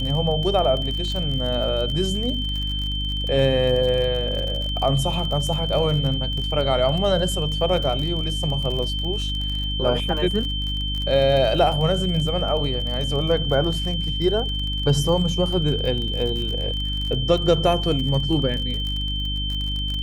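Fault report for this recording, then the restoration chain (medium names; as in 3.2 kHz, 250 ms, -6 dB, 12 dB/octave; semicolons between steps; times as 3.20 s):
crackle 39 per s -27 dBFS
hum 50 Hz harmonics 6 -27 dBFS
whine 3.1 kHz -27 dBFS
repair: de-click; de-hum 50 Hz, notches 6; band-stop 3.1 kHz, Q 30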